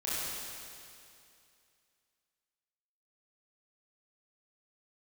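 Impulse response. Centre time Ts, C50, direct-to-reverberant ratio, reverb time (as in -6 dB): 182 ms, -4.5 dB, -10.0 dB, 2.5 s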